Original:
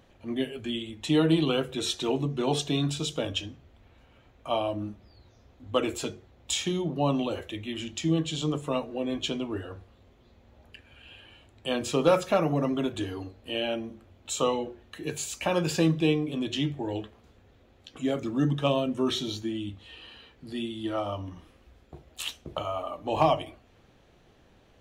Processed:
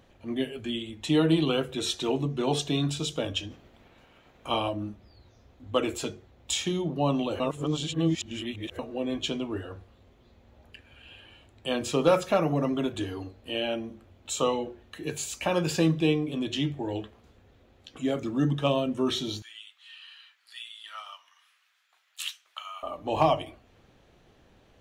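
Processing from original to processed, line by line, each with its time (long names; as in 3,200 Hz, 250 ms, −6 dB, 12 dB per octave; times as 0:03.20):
0:03.50–0:04.68: ceiling on every frequency bin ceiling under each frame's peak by 13 dB
0:07.40–0:08.79: reverse
0:19.42–0:22.83: high-pass filter 1,300 Hz 24 dB per octave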